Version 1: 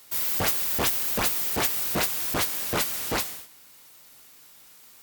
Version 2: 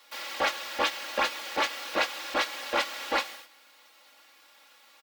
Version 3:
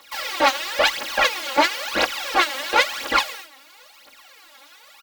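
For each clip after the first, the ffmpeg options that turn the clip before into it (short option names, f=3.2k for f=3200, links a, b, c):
-filter_complex "[0:a]acrossover=split=380 4600:gain=0.0794 1 0.141[a][b][c];[a][b][c]amix=inputs=3:normalize=0,acrossover=split=7400[d][e];[e]acompressor=threshold=-49dB:ratio=4:attack=1:release=60[f];[d][f]amix=inputs=2:normalize=0,aecho=1:1:3.6:0.98"
-af "aphaser=in_gain=1:out_gain=1:delay=3.9:decay=0.75:speed=0.98:type=triangular,volume=5.5dB"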